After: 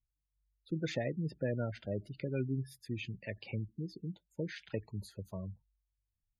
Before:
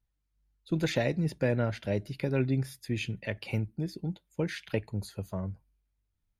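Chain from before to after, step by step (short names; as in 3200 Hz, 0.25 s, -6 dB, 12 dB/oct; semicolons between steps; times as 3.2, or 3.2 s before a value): spectral gate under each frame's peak -20 dB strong; gain -7 dB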